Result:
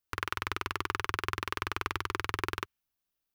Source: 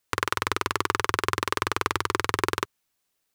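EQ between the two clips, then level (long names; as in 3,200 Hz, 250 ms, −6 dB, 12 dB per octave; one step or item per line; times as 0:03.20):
high-shelf EQ 8,500 Hz −6.5 dB
dynamic equaliser 2,200 Hz, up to +7 dB, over −43 dBFS, Q 1.1
octave-band graphic EQ 125/250/500/1,000/2,000/4,000/8,000 Hz −7/−5/−11/−6/−10/−6/−11 dB
0.0 dB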